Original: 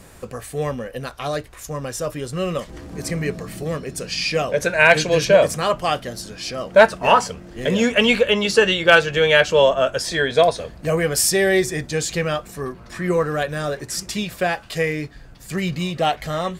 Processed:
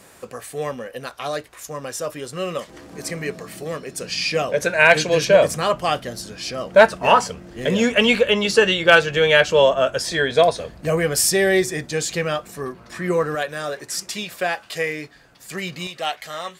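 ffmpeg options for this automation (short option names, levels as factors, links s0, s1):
-af "asetnsamples=n=441:p=0,asendcmd='4.01 highpass f 140;5.35 highpass f 60;11.63 highpass f 160;13.35 highpass f 490;15.87 highpass f 1400',highpass=f=350:p=1"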